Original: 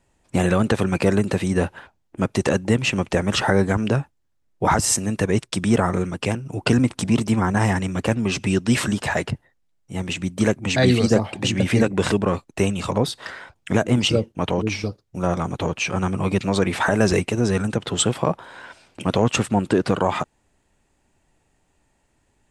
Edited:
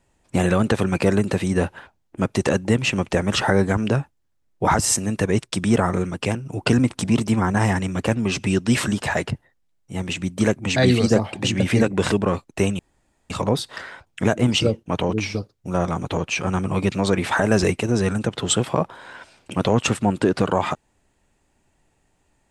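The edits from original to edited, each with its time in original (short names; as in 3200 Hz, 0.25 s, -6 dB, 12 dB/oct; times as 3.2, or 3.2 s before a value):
12.79 insert room tone 0.51 s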